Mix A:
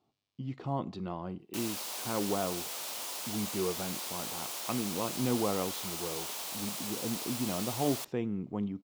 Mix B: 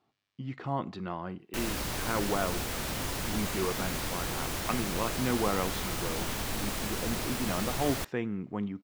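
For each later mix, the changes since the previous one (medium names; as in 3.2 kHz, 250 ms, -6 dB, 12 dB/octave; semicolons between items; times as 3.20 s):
background: remove high-pass 800 Hz 12 dB/octave; master: add peaking EQ 1.7 kHz +11 dB 1.1 oct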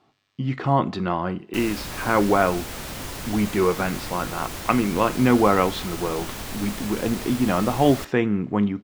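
speech +11.0 dB; reverb: on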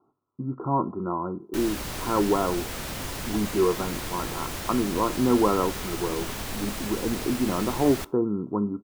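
speech: add rippled Chebyshev low-pass 1.4 kHz, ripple 9 dB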